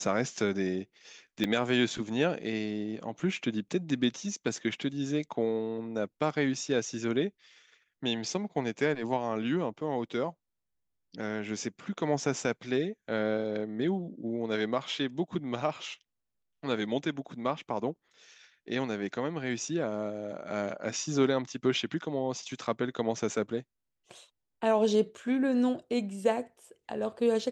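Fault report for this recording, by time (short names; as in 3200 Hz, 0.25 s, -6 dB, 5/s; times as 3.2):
1.44 gap 2.6 ms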